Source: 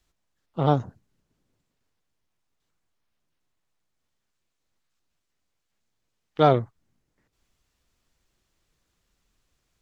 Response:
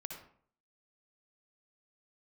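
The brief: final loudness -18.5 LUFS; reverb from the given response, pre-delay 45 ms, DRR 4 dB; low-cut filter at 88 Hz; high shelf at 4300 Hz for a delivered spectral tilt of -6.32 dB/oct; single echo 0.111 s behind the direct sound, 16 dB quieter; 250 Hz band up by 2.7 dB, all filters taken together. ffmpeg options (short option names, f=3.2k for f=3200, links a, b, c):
-filter_complex "[0:a]highpass=88,equalizer=f=250:t=o:g=4,highshelf=f=4.3k:g=-4.5,aecho=1:1:111:0.158,asplit=2[a][b];[1:a]atrim=start_sample=2205,adelay=45[c];[b][c]afir=irnorm=-1:irlink=0,volume=-2dB[d];[a][d]amix=inputs=2:normalize=0,volume=3dB"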